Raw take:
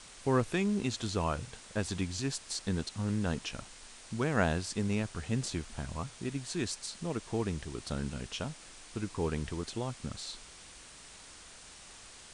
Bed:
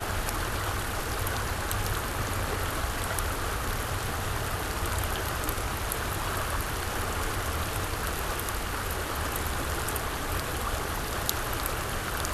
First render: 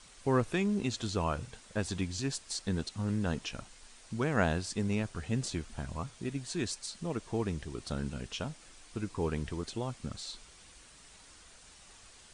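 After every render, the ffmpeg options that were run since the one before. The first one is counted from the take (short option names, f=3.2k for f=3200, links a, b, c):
-af "afftdn=nr=6:nf=-52"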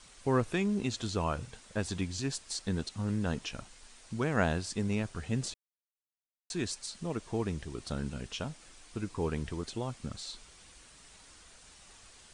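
-filter_complex "[0:a]asplit=3[a][b][c];[a]atrim=end=5.54,asetpts=PTS-STARTPTS,afade=t=out:st=5.536:d=0.004:c=hsin[d];[b]atrim=start=5.54:end=6.5,asetpts=PTS-STARTPTS,volume=0[e];[c]atrim=start=6.5,asetpts=PTS-STARTPTS,afade=t=in:d=0.004:c=hsin[f];[d][e][f]concat=n=3:v=0:a=1"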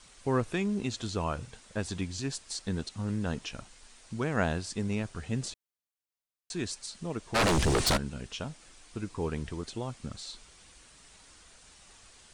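-filter_complex "[0:a]asplit=3[a][b][c];[a]afade=t=out:st=7.34:d=0.02[d];[b]aeval=exprs='0.0891*sin(PI/2*7.94*val(0)/0.0891)':c=same,afade=t=in:st=7.34:d=0.02,afade=t=out:st=7.96:d=0.02[e];[c]afade=t=in:st=7.96:d=0.02[f];[d][e][f]amix=inputs=3:normalize=0"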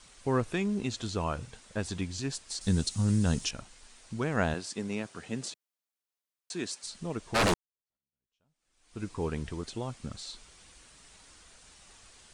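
-filter_complex "[0:a]asettb=1/sr,asplit=3[a][b][c];[a]atrim=end=2.614[d];[b]atrim=start=2.61:end=3.51,asetpts=PTS-STARTPTS,afade=t=in:d=0.004:c=qsin,afade=t=out:st=0.896:d=0.004:c=qsin,bass=f=250:g=8,treble=f=4k:g=14[e];[c]atrim=start=3.506[f];[d][e]acrossfade=d=0.004:c1=hsin:c2=qsin[g];[g][f]acrossfade=d=0.004:c1=qsin:c2=hsin,asettb=1/sr,asplit=3[h][i][j];[h]atrim=end=4.544[k];[i]atrim=start=4.54:end=6.84,asetpts=PTS-STARTPTS,afade=t=in:d=0.004:c=qsin,afade=t=out:st=2.296:d=0.004:c=qsin,highpass=200[l];[j]atrim=start=6.836[m];[k][l]acrossfade=d=0.004:c1=hsin:c2=qsin[n];[n][m]acrossfade=d=0.004:c1=qsin:c2=hsin,asplit=2[o][p];[o]atrim=end=7.54,asetpts=PTS-STARTPTS,afade=t=out:st=7.536:d=0.004:c=hsin[q];[p]atrim=start=7.54,asetpts=PTS-STARTPTS,afade=t=in:d=1.48:c=exp[r];[q][r]concat=n=2:v=0:a=1"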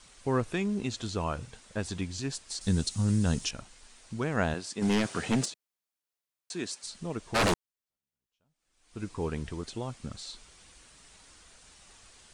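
-filter_complex "[0:a]asplit=3[a][b][c];[a]afade=t=out:st=4.81:d=0.02[d];[b]aeval=exprs='0.0944*sin(PI/2*2.51*val(0)/0.0944)':c=same,afade=t=in:st=4.81:d=0.02,afade=t=out:st=5.44:d=0.02[e];[c]afade=t=in:st=5.44:d=0.02[f];[d][e][f]amix=inputs=3:normalize=0"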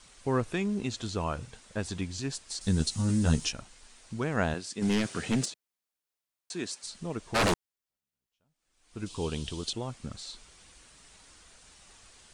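-filter_complex "[0:a]asettb=1/sr,asplit=3[a][b][c];[a]atrim=end=2.794[d];[b]atrim=start=2.79:end=3.53,asetpts=PTS-STARTPTS,afade=t=in:d=0.004:c=qsin,afade=t=out:st=0.736:d=0.004:c=qsin,asplit=2[e][f];[f]adelay=13,volume=-4dB[g];[e][g]amix=inputs=2:normalize=0,atrim=end_sample=32634[h];[c]atrim=start=3.526[i];[d][h]acrossfade=d=0.004:c1=hsin:c2=qsin[j];[j][i]acrossfade=d=0.004:c1=qsin:c2=hsin,asettb=1/sr,asplit=3[k][l][m];[k]atrim=end=4.584[n];[l]atrim=start=4.58:end=5.47,asetpts=PTS-STARTPTS,afade=t=in:d=0.004:c=qsin,afade=t=out:st=0.886:d=0.004:c=qsin,equalizer=f=860:t=o:w=1.4:g=-5.5[o];[m]atrim=start=5.466[p];[n][o]acrossfade=d=0.004:c1=hsin:c2=qsin[q];[q][p]acrossfade=d=0.004:c1=qsin:c2=hsin,asettb=1/sr,asplit=3[r][s][t];[r]atrim=end=9.064[u];[s]atrim=start=9.06:end=9.73,asetpts=PTS-STARTPTS,afade=t=in:d=0.004:c=qsin,afade=t=out:st=0.666:d=0.004:c=qsin,highshelf=f=2.5k:t=q:w=3:g=7.5[v];[t]atrim=start=9.726[w];[u][v]acrossfade=d=0.004:c1=hsin:c2=qsin[x];[x][w]acrossfade=d=0.004:c1=qsin:c2=hsin"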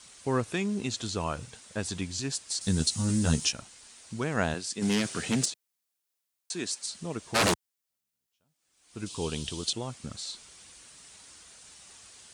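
-af "highpass=74,highshelf=f=3.8k:g=7.5"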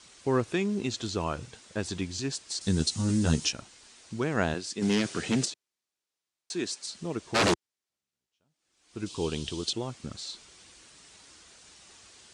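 -af "lowpass=7k,equalizer=f=350:w=2.5:g=5"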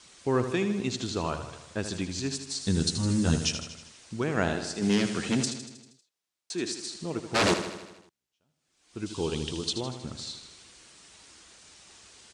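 -af "aecho=1:1:79|158|237|316|395|474|553:0.335|0.201|0.121|0.0724|0.0434|0.026|0.0156"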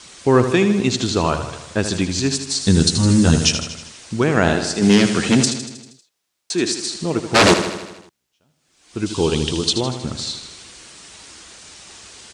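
-af "volume=12dB,alimiter=limit=-3dB:level=0:latency=1"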